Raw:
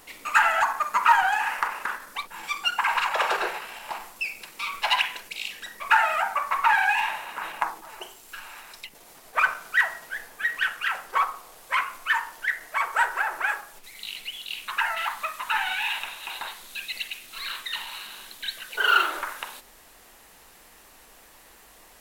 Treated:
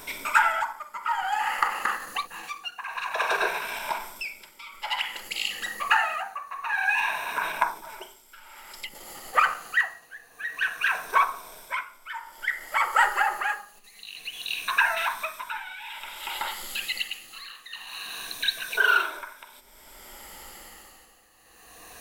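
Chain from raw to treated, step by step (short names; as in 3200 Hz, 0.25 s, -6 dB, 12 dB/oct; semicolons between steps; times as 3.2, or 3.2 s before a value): moving spectral ripple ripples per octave 1.6, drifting -0.26 Hz, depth 10 dB; 13.02–14.01 comb 4.9 ms, depth 83%; in parallel at +1.5 dB: compressor, threshold -36 dBFS, peak gain reduction 23 dB; on the sum: tremolo 0.54 Hz, depth 84%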